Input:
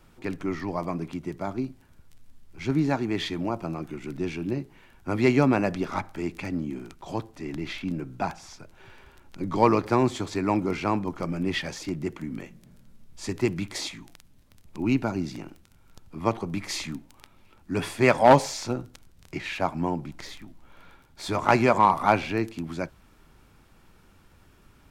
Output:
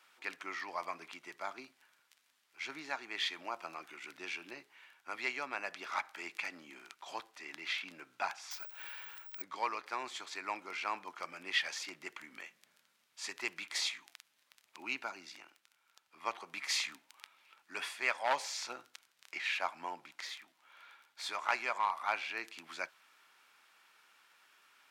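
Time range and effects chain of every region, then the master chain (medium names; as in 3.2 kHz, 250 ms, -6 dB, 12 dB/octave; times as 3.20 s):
8.51–9.42 s: companding laws mixed up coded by mu + careless resampling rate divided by 2×, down none, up zero stuff
whole clip: gain riding within 4 dB 0.5 s; Bessel high-pass 2 kHz, order 2; treble shelf 4.5 kHz -11 dB; trim +1 dB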